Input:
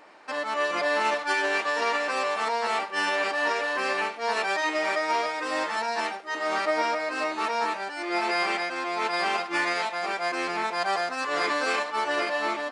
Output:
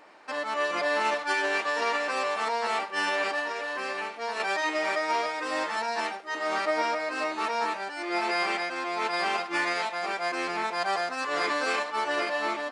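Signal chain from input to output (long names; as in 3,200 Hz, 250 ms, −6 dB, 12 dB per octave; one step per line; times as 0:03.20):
0:03.39–0:04.40: downward compressor 4 to 1, threshold −28 dBFS, peak gain reduction 6 dB
level −1.5 dB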